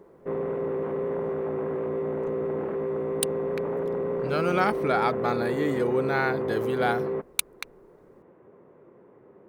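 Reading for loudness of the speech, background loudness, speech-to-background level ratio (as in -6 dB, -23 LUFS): -28.0 LUFS, -29.5 LUFS, 1.5 dB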